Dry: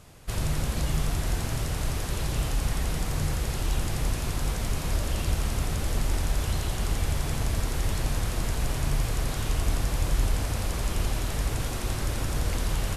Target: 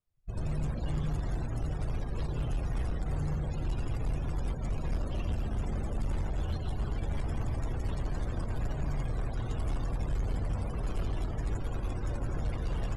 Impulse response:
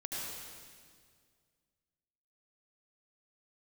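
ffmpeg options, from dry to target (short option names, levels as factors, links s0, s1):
-filter_complex "[0:a]asplit=2[s0][s1];[1:a]atrim=start_sample=2205[s2];[s1][s2]afir=irnorm=-1:irlink=0,volume=0.75[s3];[s0][s3]amix=inputs=2:normalize=0,aeval=exprs='0.376*(cos(1*acos(clip(val(0)/0.376,-1,1)))-cos(1*PI/2))+0.0237*(cos(7*acos(clip(val(0)/0.376,-1,1)))-cos(7*PI/2))+0.0106*(cos(8*acos(clip(val(0)/0.376,-1,1)))-cos(8*PI/2))':c=same,afftdn=nr=35:nf=-33,asoftclip=type=tanh:threshold=0.0841,volume=0.631"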